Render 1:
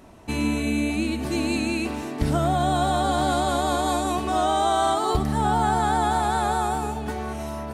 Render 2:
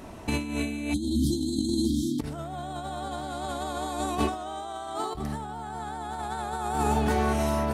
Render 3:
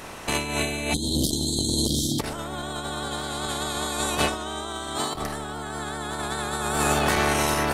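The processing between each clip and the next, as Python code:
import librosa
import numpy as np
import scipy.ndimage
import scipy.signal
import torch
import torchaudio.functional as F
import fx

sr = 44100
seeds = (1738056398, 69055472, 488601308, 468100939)

y1 = fx.spec_erase(x, sr, start_s=0.94, length_s=1.26, low_hz=360.0, high_hz=3100.0)
y1 = fx.over_compress(y1, sr, threshold_db=-28.0, ratio=-0.5)
y2 = fx.spec_clip(y1, sr, under_db=18)
y2 = fx.transformer_sat(y2, sr, knee_hz=380.0)
y2 = y2 * 10.0 ** (4.0 / 20.0)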